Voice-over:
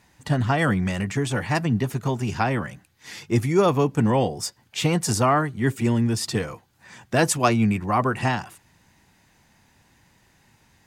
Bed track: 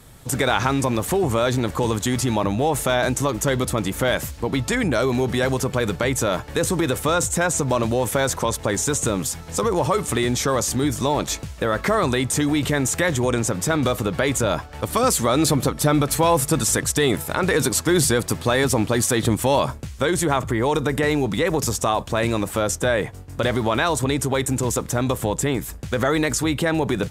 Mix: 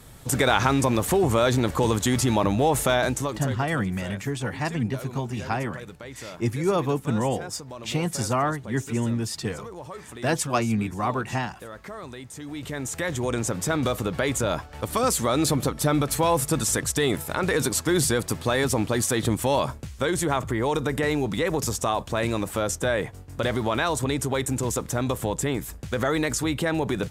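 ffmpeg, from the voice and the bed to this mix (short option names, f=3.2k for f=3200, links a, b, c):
-filter_complex "[0:a]adelay=3100,volume=-4.5dB[a];[1:a]volume=14dB,afade=t=out:st=2.84:d=0.76:silence=0.125893,afade=t=in:st=12.39:d=1.13:silence=0.188365[b];[a][b]amix=inputs=2:normalize=0"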